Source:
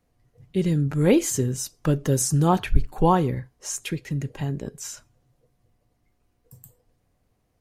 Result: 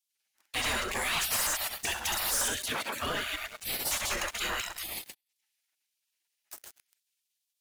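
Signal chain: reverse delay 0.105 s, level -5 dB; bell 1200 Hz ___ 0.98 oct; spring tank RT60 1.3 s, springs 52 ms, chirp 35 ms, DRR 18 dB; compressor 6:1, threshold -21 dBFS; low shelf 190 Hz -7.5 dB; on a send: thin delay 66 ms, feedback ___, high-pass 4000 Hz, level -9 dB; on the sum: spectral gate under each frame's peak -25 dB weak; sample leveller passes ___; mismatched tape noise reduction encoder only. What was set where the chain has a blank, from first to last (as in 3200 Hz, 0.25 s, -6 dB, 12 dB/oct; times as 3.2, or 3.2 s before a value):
+15 dB, 30%, 5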